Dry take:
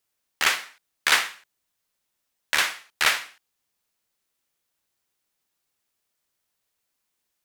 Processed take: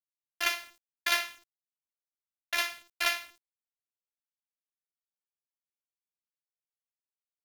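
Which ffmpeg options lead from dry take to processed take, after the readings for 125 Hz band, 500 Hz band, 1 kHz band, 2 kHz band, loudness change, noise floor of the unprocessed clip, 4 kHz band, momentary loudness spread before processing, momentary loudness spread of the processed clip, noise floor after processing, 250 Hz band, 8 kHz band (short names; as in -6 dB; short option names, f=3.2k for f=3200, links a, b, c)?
n/a, -4.0 dB, -7.5 dB, -8.0 dB, -7.5 dB, -79 dBFS, -7.5 dB, 8 LU, 8 LU, under -85 dBFS, -6.5 dB, -9.0 dB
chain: -af "highshelf=f=4.2k:g=6,afftfilt=real='hypot(re,im)*cos(PI*b)':imag='0':win_size=512:overlap=0.75,equalizer=f=630:t=o:w=0.33:g=9,equalizer=f=2.5k:t=o:w=0.33:g=3,equalizer=f=8k:t=o:w=0.33:g=-12,acrusher=bits=7:mix=0:aa=0.000001,volume=-6.5dB"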